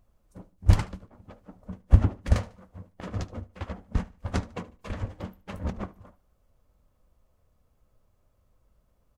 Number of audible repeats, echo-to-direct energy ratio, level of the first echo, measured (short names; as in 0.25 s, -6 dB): 2, -19.5 dB, -20.0 dB